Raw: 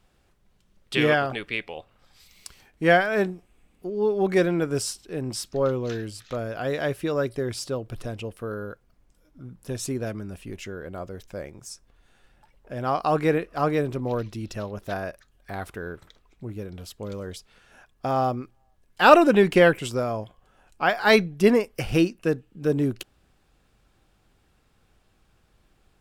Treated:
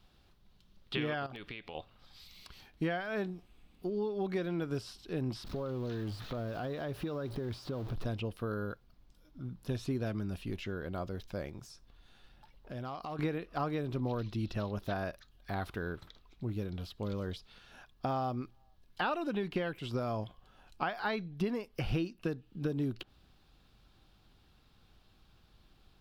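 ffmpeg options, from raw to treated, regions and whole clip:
ffmpeg -i in.wav -filter_complex "[0:a]asettb=1/sr,asplit=3[link_01][link_02][link_03];[link_01]atrim=end=1.264[link_04];[link_02]atrim=start=1.26:end=1.75,asetpts=PTS-STARTPTS,afade=type=in:duration=0.004:curve=qsin,afade=type=out:start_time=0.486:duration=0.004:curve=qsin,acompressor=threshold=-38dB:ratio=4:attack=3.2:release=140:knee=1:detection=peak,aeval=exprs='(mod(21.1*val(0)+1,2)-1)/21.1':channel_layout=same[link_05];[link_03]atrim=start=1.746[link_06];[link_04][link_05]acrossfade=duration=0.004:curve1=hsin:curve2=qsin[link_07];[link_07][link_06]acrossfade=duration=0.004:curve1=qsin:curve2=hsin,asettb=1/sr,asplit=3[link_08][link_09][link_10];[link_08]atrim=end=5.444[link_11];[link_09]atrim=start=5.44:end=8.06,asetpts=PTS-STARTPTS,afade=type=in:duration=0.004:curve=qsin,afade=type=out:start_time=2.616:duration=0.004:curve=qsin,aeval=exprs='val(0)+0.5*0.015*sgn(val(0))':channel_layout=same,acompressor=threshold=-32dB:ratio=4:attack=3.2:release=140:knee=1:detection=peak,adynamicequalizer=threshold=0.00251:dfrequency=1600:dqfactor=0.7:tfrequency=1600:tqfactor=0.7:attack=5:release=100:ratio=0.375:range=3.5:mode=cutabove:tftype=highshelf[link_12];[link_10]atrim=start=8.056[link_13];[link_11][link_12]acrossfade=duration=0.004:curve1=hsin:curve2=qsin[link_14];[link_14][link_13]acrossfade=duration=0.004:curve1=qsin:curve2=hsin,asettb=1/sr,asplit=3[link_15][link_16][link_17];[link_15]atrim=end=11.584[link_18];[link_16]atrim=start=11.58:end=13.19,asetpts=PTS-STARTPTS,afade=type=in:duration=0.004:curve=qsin,afade=type=out:start_time=1.606:duration=0.004:curve=qsin,acompressor=threshold=-36dB:ratio=5:attack=3.2:release=140:knee=1:detection=peak,asoftclip=type=hard:threshold=-31dB[link_19];[link_17]atrim=start=13.186[link_20];[link_18][link_19]acrossfade=duration=0.004:curve1=hsin:curve2=qsin[link_21];[link_21][link_20]acrossfade=duration=0.004:curve1=qsin:curve2=hsin,acompressor=threshold=-28dB:ratio=10,equalizer=frequency=500:width_type=o:width=1:gain=-5,equalizer=frequency=2000:width_type=o:width=1:gain=-5,equalizer=frequency=4000:width_type=o:width=1:gain=8,equalizer=frequency=8000:width_type=o:width=1:gain=-10,acrossover=split=2800[link_22][link_23];[link_23]acompressor=threshold=-52dB:ratio=4:attack=1:release=60[link_24];[link_22][link_24]amix=inputs=2:normalize=0" out.wav

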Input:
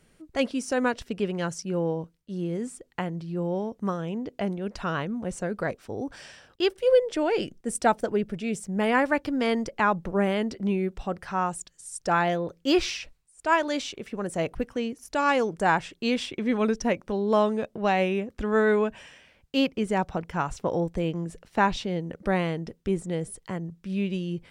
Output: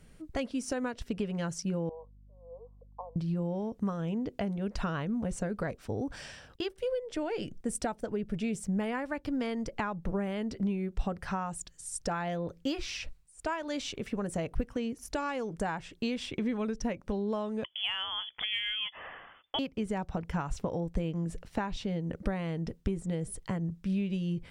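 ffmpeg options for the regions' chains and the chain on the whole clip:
ffmpeg -i in.wav -filter_complex "[0:a]asettb=1/sr,asplit=3[link_01][link_02][link_03];[link_01]atrim=end=1.894[link_04];[link_02]atrim=start=1.89:end=3.16,asetpts=PTS-STARTPTS,afade=type=in:duration=0.004:curve=qsin,afade=type=out:start_time=1.266:duration=0.004:curve=qsin,asuperpass=centerf=720:order=20:qfactor=1.1,equalizer=frequency=640:width_type=o:width=1.8:gain=-10.5,aeval=exprs='val(0)+0.000708*(sin(2*PI*50*n/s)+sin(2*PI*2*50*n/s)/2+sin(2*PI*3*50*n/s)/3+sin(2*PI*4*50*n/s)/4+sin(2*PI*5*50*n/s)/5)':channel_layout=same[link_05];[link_03]atrim=start=3.156[link_06];[link_04][link_05]acrossfade=duration=0.004:curve1=hsin:curve2=qsin[link_07];[link_07][link_06]acrossfade=duration=0.004:curve1=qsin:curve2=hsin,asettb=1/sr,asplit=3[link_08][link_09][link_10];[link_08]atrim=end=17.644[link_11];[link_09]atrim=start=17.64:end=19.59,asetpts=PTS-STARTPTS,afade=type=in:duration=0.004:curve=qsin,afade=type=out:start_time=1.946:duration=0.004:curve=qsin,highpass=frequency=680:poles=1,lowpass=frequency=3100:width_type=q:width=0.5098,lowpass=frequency=3100:width_type=q:width=0.6013,lowpass=frequency=3100:width_type=q:width=0.9,lowpass=frequency=3100:width_type=q:width=2.563,afreqshift=-3600,acontrast=47[link_12];[link_10]atrim=start=19.586[link_13];[link_11][link_12]acrossfade=duration=0.004:curve1=hsin:curve2=qsin[link_14];[link_14][link_13]acrossfade=duration=0.004:curve1=qsin:curve2=hsin,acompressor=threshold=-31dB:ratio=10,lowshelf=frequency=150:gain=10.5,bandreject=frequency=360:width=12" out.wav

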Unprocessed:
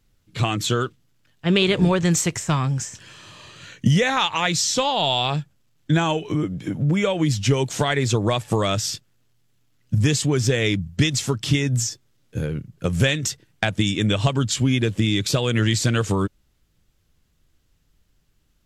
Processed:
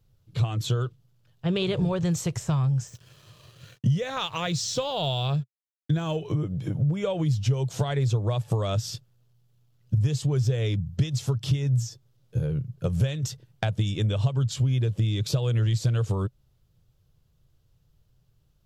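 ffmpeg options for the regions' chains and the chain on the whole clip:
ffmpeg -i in.wav -filter_complex "[0:a]asettb=1/sr,asplit=3[link_01][link_02][link_03];[link_01]atrim=end=2.874[link_04];[link_02]atrim=start=2.87:end=6.17,asetpts=PTS-STARTPTS,afade=type=in:duration=0.004:curve=qsin,afade=type=out:start_time=3.296:duration=0.004:curve=qsin,lowpass=11000,aeval=exprs='sgn(val(0))*max(abs(val(0))-0.00447,0)':channel_layout=same,equalizer=frequency=860:width=3.5:gain=-7.5[link_05];[link_03]atrim=start=6.166[link_06];[link_04][link_05]acrossfade=duration=0.004:curve1=hsin:curve2=qsin[link_07];[link_07][link_06]acrossfade=duration=0.004:curve1=qsin:curve2=hsin,equalizer=frequency=125:width_type=o:width=1:gain=12,equalizer=frequency=250:width_type=o:width=1:gain=-9,equalizer=frequency=500:width_type=o:width=1:gain=4,equalizer=frequency=2000:width_type=o:width=1:gain=-8,equalizer=frequency=8000:width_type=o:width=1:gain=-6,acompressor=threshold=-22dB:ratio=2.5,volume=-2.5dB" out.wav

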